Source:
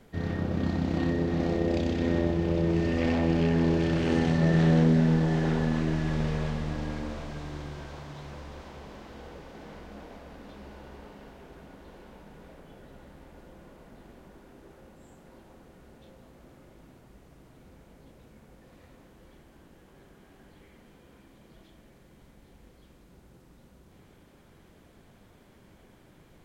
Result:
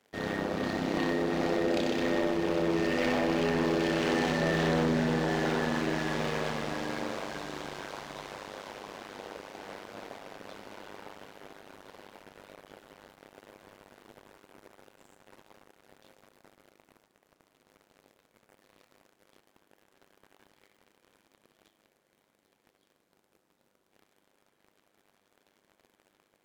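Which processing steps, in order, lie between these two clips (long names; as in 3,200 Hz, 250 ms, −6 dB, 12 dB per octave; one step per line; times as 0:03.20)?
Bessel high-pass filter 420 Hz, order 2
amplitude modulation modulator 100 Hz, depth 55%
leveller curve on the samples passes 3
level −2 dB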